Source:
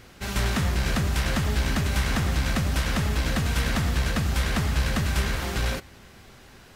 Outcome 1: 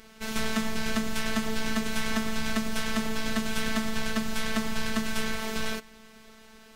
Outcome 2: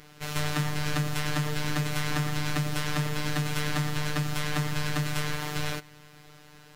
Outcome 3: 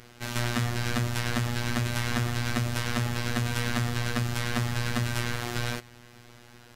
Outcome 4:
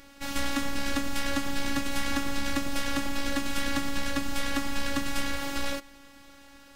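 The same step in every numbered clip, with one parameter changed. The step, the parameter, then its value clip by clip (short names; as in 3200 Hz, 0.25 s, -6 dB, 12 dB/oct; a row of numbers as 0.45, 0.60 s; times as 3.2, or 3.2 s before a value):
robotiser, frequency: 220, 150, 120, 280 Hz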